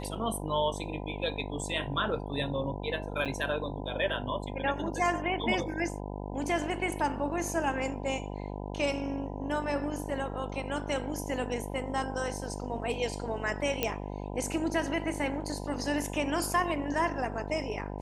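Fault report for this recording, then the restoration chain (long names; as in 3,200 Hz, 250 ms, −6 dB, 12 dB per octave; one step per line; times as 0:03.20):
mains buzz 50 Hz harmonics 20 −38 dBFS
0:03.25–0:03.26: drop-out 7 ms
0:13.83: click −12 dBFS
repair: click removal
hum removal 50 Hz, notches 20
repair the gap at 0:03.25, 7 ms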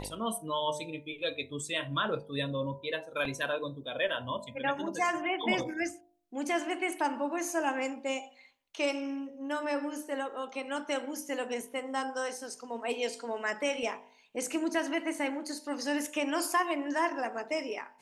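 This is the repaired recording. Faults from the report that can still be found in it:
none of them is left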